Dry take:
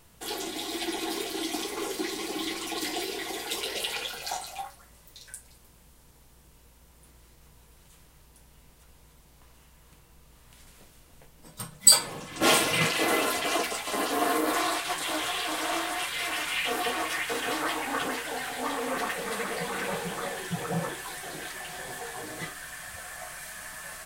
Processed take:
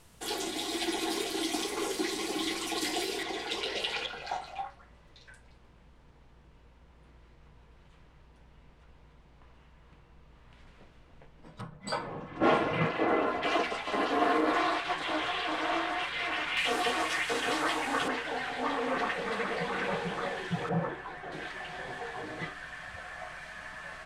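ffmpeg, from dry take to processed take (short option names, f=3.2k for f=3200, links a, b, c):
-af "asetnsamples=n=441:p=0,asendcmd='3.23 lowpass f 4500;4.06 lowpass f 2600;11.61 lowpass f 1400;13.43 lowpass f 3000;16.57 lowpass f 7300;18.08 lowpass f 3600;20.69 lowpass f 1700;21.32 lowpass f 3100',lowpass=11k"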